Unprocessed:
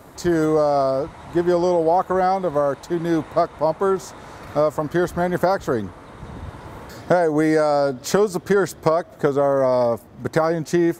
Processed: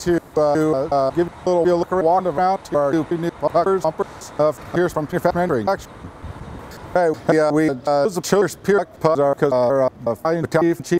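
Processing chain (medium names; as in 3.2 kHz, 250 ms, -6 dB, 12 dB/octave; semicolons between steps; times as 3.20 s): slices played last to first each 183 ms, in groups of 2; trim +1.5 dB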